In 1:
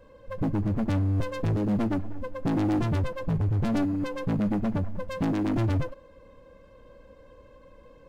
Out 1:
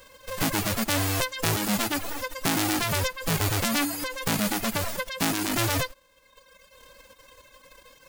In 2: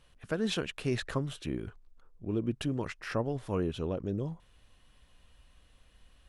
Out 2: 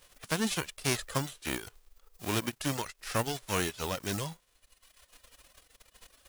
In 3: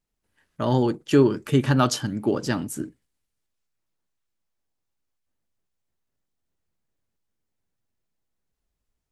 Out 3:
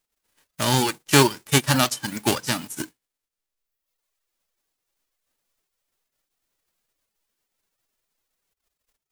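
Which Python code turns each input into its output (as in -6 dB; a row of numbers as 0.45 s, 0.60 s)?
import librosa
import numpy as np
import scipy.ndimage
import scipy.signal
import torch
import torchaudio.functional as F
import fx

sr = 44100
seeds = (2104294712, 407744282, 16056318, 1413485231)

y = fx.envelope_flatten(x, sr, power=0.3)
y = fx.dereverb_blind(y, sr, rt60_s=1.3)
y = fx.end_taper(y, sr, db_per_s=540.0)
y = F.gain(torch.from_numpy(y), 1.5).numpy()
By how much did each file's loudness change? +1.5 LU, +1.0 LU, +1.5 LU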